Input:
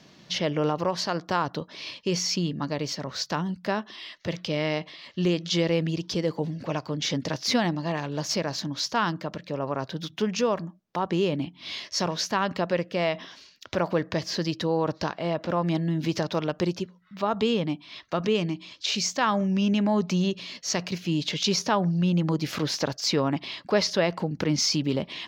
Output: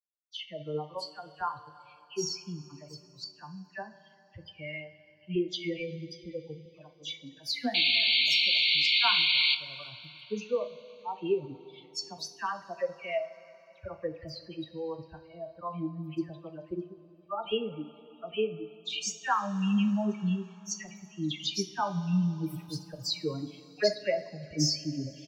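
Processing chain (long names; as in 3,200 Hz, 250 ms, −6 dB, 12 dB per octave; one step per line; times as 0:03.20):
spectral dynamics exaggerated over time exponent 3
0:06.55–0:08.55: high-pass filter 280 Hz 12 dB per octave
all-pass dispersion lows, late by 105 ms, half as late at 2,200 Hz
0:07.74–0:09.55: sound drawn into the spectrogram noise 2,100–4,600 Hz −26 dBFS
far-end echo of a speakerphone 340 ms, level −28 dB
coupled-rooms reverb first 0.38 s, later 3.7 s, from −17 dB, DRR 7 dB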